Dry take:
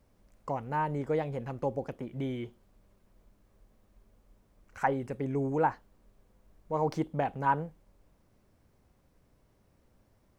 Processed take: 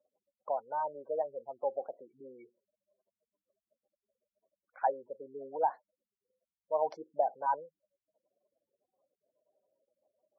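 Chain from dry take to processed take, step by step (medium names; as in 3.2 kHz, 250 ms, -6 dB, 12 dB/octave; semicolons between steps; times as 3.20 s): spectral gate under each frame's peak -15 dB strong; resonant high-pass 630 Hz, resonance Q 4.9; trim -8 dB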